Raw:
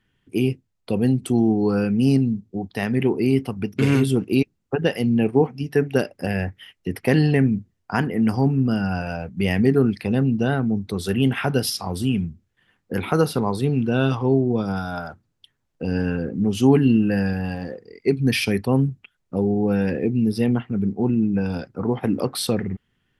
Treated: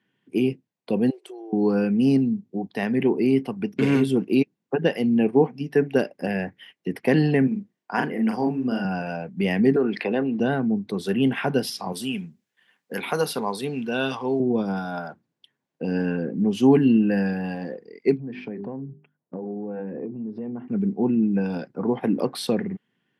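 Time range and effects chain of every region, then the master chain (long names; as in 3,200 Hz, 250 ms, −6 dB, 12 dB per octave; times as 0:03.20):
0:01.10–0:01.53: linear-phase brick-wall high-pass 330 Hz + downward compressor 8 to 1, threshold −36 dBFS
0:07.47–0:08.85: high-pass filter 370 Hz 6 dB per octave + double-tracking delay 40 ms −4 dB
0:09.76–0:10.40: three-way crossover with the lows and the highs turned down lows −17 dB, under 330 Hz, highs −16 dB, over 3,900 Hz + envelope flattener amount 50%
0:11.92–0:14.40: spectral tilt +3 dB per octave + notch filter 330 Hz, Q 8.6
0:18.17–0:20.68: low-pass filter 1,100 Hz + mains-hum notches 50/100/150/200/250/300/350/400 Hz + downward compressor 10 to 1, threshold −27 dBFS
whole clip: high-pass filter 160 Hz 24 dB per octave; high-shelf EQ 4,500 Hz −10 dB; notch filter 1,300 Hz, Q 8.3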